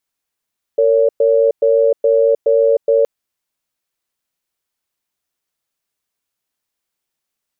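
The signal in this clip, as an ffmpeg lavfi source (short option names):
-f lavfi -i "aevalsrc='0.251*(sin(2*PI*457*t)+sin(2*PI*563*t))*clip(min(mod(t,0.42),0.31-mod(t,0.42))/0.005,0,1)':d=2.27:s=44100"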